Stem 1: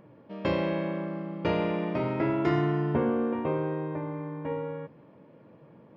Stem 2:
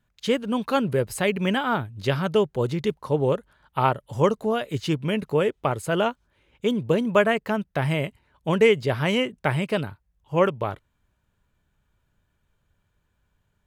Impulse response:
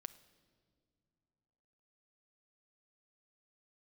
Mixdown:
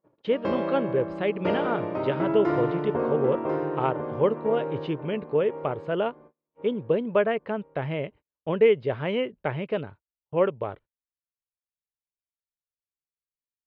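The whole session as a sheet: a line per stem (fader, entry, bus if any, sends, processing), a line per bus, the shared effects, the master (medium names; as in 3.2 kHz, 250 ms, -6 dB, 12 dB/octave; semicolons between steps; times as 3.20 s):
-1.5 dB, 0.00 s, send -11 dB, echo send -13 dB, high-order bell 680 Hz +8 dB 2.6 oct; auto duck -8 dB, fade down 0.40 s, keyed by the second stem
-8.0 dB, 0.00 s, no send, no echo send, low-pass 3.4 kHz 24 dB/octave; peaking EQ 470 Hz +7.5 dB 1.2 oct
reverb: on, pre-delay 6 ms
echo: feedback delay 1043 ms, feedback 31%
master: gate -47 dBFS, range -35 dB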